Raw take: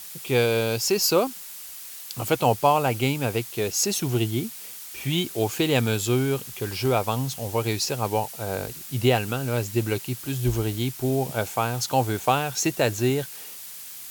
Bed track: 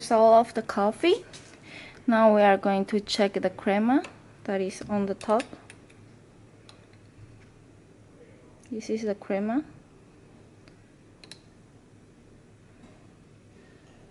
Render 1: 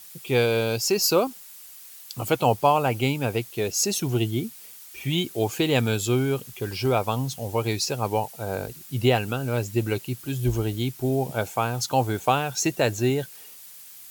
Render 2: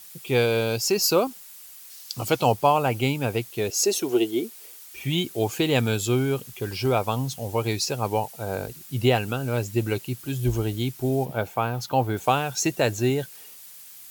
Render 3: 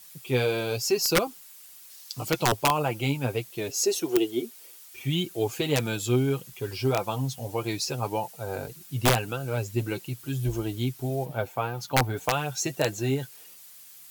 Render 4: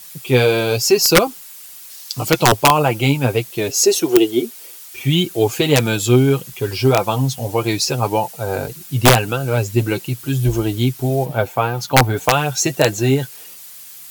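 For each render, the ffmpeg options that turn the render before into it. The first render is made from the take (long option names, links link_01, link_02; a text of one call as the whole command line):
ffmpeg -i in.wav -af "afftdn=noise_reduction=7:noise_floor=-40" out.wav
ffmpeg -i in.wav -filter_complex "[0:a]asettb=1/sr,asplit=3[link_01][link_02][link_03];[link_01]atrim=end=1.904[link_04];[link_02]atrim=start=1.9:end=2.52,asetpts=PTS-STARTPTS,afade=type=in:duration=0.004:curve=qsin,afade=type=out:start_time=0.616:duration=0.004:curve=qsin,equalizer=frequency=5100:width=1.6:gain=7[link_05];[link_03]atrim=start=2.516[link_06];[link_04][link_05]acrossfade=duration=0.004:curve1=hsin:curve2=qsin[link_07];[link_07][link_06]acrossfade=duration=0.004:curve1=qsin:curve2=hsin,asettb=1/sr,asplit=3[link_08][link_09][link_10];[link_08]atrim=end=3.704[link_11];[link_09]atrim=start=3.7:end=4.8,asetpts=PTS-STARTPTS,afade=type=in:duration=0.004:curve=qsin,afade=type=out:start_time=1.096:duration=0.004:curve=qsin,highpass=frequency=380:width_type=q:width=2.2[link_12];[link_10]atrim=start=4.796[link_13];[link_11][link_12]acrossfade=duration=0.004:curve1=hsin:curve2=qsin[link_14];[link_14][link_13]acrossfade=duration=0.004:curve1=qsin:curve2=hsin,asettb=1/sr,asplit=3[link_15][link_16][link_17];[link_15]atrim=end=11.254[link_18];[link_16]atrim=start=11.25:end=12.17,asetpts=PTS-STARTPTS,afade=type=in:duration=0.004:curve=qsin,afade=type=out:start_time=0.916:duration=0.004:curve=qsin,equalizer=frequency=7700:width_type=o:width=1.5:gain=-10.5[link_19];[link_17]atrim=start=12.166[link_20];[link_18][link_19]acrossfade=duration=0.004:curve1=hsin:curve2=qsin[link_21];[link_21][link_20]acrossfade=duration=0.004:curve1=qsin:curve2=hsin" out.wav
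ffmpeg -i in.wav -af "flanger=delay=5.7:depth=2.3:regen=23:speed=1.7:shape=sinusoidal,aeval=exprs='(mod(4.73*val(0)+1,2)-1)/4.73':channel_layout=same" out.wav
ffmpeg -i in.wav -af "volume=11dB" out.wav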